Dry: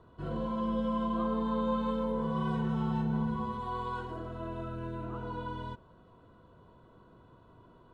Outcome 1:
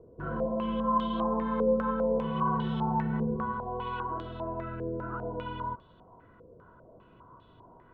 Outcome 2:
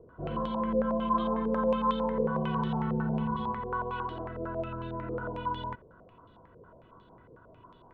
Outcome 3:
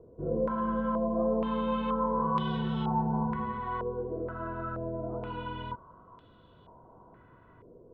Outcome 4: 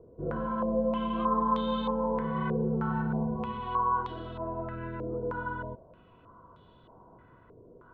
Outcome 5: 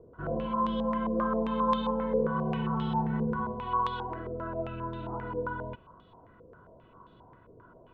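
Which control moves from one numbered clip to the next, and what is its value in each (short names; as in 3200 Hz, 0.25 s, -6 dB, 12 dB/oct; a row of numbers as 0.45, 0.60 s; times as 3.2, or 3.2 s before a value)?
stepped low-pass, rate: 5, 11, 2.1, 3.2, 7.5 Hz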